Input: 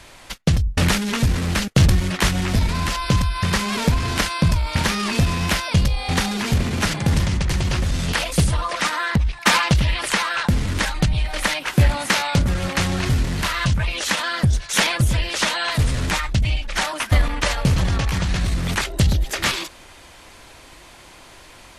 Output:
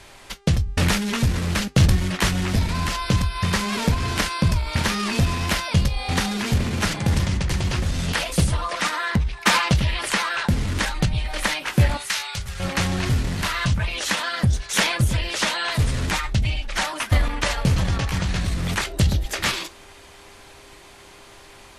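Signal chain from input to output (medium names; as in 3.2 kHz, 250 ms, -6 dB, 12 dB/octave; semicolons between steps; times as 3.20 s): 11.97–12.60 s: amplifier tone stack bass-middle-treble 10-0-10; mains buzz 400 Hz, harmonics 24, -54 dBFS -7 dB/octave; flange 0.18 Hz, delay 8.7 ms, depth 1.8 ms, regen -69%; trim +2.5 dB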